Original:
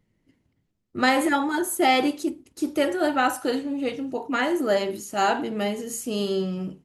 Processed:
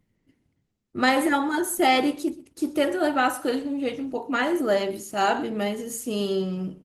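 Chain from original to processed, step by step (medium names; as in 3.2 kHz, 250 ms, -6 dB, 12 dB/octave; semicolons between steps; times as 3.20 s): delay 124 ms -19.5 dB; Opus 24 kbps 48 kHz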